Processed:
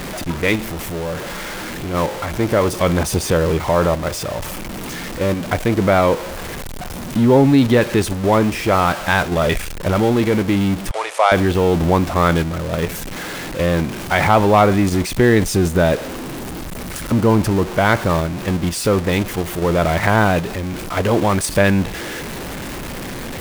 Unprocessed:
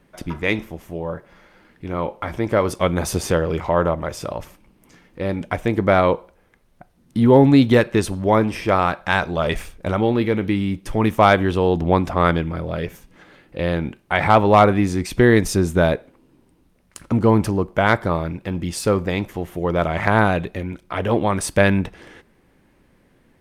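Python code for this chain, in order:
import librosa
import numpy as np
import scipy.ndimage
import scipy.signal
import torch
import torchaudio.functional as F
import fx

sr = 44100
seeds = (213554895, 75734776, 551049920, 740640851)

p1 = x + 0.5 * 10.0 ** (-21.0 / 20.0) * np.sign(x)
p2 = fx.level_steps(p1, sr, step_db=20)
p3 = p1 + (p2 * librosa.db_to_amplitude(-1.0))
p4 = fx.ellip_bandpass(p3, sr, low_hz=540.0, high_hz=9800.0, order=3, stop_db=40, at=(10.91, 11.32))
y = p4 * librosa.db_to_amplitude(-3.0)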